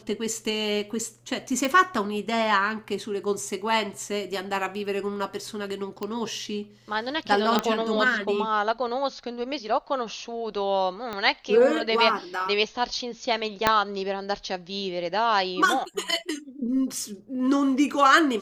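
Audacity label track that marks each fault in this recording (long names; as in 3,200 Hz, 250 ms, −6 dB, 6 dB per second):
1.650000	1.650000	click
6.030000	6.030000	click −18 dBFS
7.590000	7.590000	click −8 dBFS
11.130000	11.130000	click −18 dBFS
13.670000	13.670000	click −4 dBFS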